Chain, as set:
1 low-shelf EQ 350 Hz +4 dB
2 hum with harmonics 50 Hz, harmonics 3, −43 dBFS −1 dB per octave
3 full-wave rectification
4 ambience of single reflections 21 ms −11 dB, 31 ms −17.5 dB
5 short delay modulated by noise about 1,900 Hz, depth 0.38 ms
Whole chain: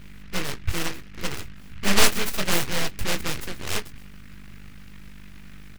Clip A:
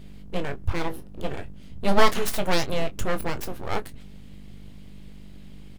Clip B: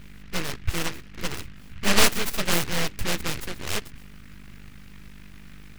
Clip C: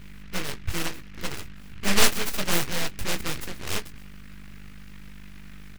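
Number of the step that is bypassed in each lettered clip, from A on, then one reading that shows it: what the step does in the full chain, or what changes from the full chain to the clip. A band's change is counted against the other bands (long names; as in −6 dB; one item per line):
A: 5, 8 kHz band −10.5 dB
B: 4, change in crest factor +1.5 dB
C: 1, change in momentary loudness spread +11 LU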